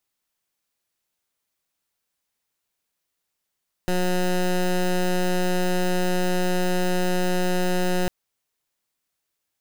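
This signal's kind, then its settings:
pulse wave 181 Hz, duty 16% −21.5 dBFS 4.20 s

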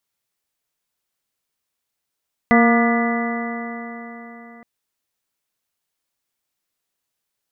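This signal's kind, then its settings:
stiff-string partials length 2.12 s, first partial 232 Hz, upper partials −7/−4.5/−15/−8/−17.5/−15.5/−5 dB, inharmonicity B 0.0023, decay 4.05 s, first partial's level −12 dB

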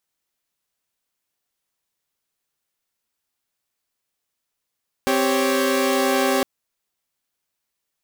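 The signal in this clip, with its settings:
held notes C4/G4/C#5 saw, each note −19.5 dBFS 1.36 s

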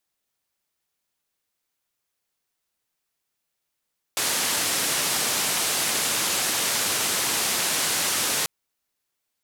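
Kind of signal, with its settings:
band-limited noise 130–11,000 Hz, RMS −24.5 dBFS 4.29 s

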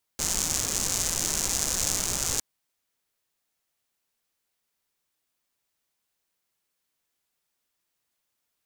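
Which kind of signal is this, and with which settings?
rain-like ticks over hiss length 2.21 s, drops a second 180, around 6,700 Hz, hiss −5.5 dB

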